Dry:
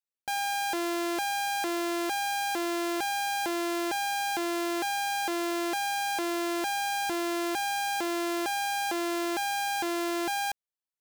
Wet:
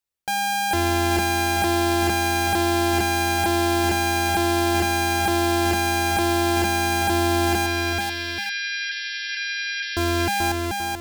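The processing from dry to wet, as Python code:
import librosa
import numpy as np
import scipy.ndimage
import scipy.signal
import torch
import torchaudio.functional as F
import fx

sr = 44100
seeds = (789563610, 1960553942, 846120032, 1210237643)

y = fx.octave_divider(x, sr, octaves=2, level_db=3.0)
y = fx.brickwall_bandpass(y, sr, low_hz=1500.0, high_hz=5700.0, at=(7.66, 9.97))
y = fx.echo_multitap(y, sr, ms=(434, 832), db=(-3.5, -12.0))
y = y * librosa.db_to_amplitude(6.5)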